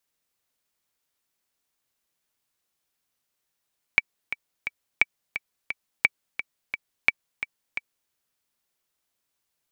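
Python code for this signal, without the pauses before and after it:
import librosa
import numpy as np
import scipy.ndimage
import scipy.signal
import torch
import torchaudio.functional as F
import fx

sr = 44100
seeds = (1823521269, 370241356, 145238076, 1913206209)

y = fx.click_track(sr, bpm=174, beats=3, bars=4, hz=2300.0, accent_db=11.5, level_db=-3.5)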